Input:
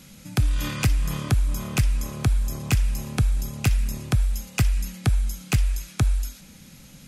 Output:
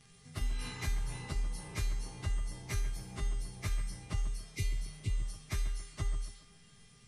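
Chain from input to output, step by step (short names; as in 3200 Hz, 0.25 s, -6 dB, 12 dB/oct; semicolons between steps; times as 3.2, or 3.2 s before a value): pitch shift by moving bins -3 st; on a send: tape echo 0.139 s, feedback 51%, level -8 dB, low-pass 1500 Hz; on the sum: spectral repair 4.43–5.29, 530–2000 Hz; resonator 400 Hz, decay 0.54 s, mix 90%; gain +6.5 dB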